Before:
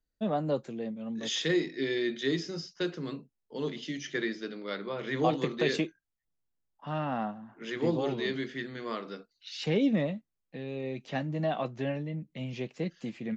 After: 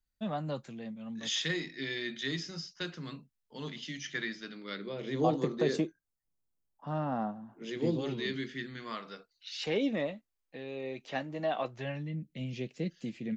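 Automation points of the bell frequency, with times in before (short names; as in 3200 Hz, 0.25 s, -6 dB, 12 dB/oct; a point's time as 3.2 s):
bell -11.5 dB 1.4 oct
4.47 s 410 Hz
5.36 s 2600 Hz
7.39 s 2600 Hz
8.06 s 700 Hz
8.62 s 700 Hz
9.5 s 160 Hz
11.65 s 160 Hz
12.23 s 1000 Hz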